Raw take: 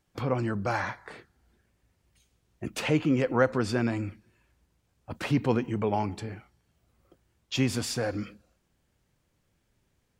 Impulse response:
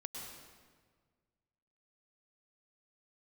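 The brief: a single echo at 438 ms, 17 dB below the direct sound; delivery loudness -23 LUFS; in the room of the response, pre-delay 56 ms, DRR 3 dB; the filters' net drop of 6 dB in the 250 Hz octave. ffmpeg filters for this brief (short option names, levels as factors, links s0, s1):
-filter_complex "[0:a]equalizer=f=250:t=o:g=-7.5,aecho=1:1:438:0.141,asplit=2[s0][s1];[1:a]atrim=start_sample=2205,adelay=56[s2];[s1][s2]afir=irnorm=-1:irlink=0,volume=0.891[s3];[s0][s3]amix=inputs=2:normalize=0,volume=2.11"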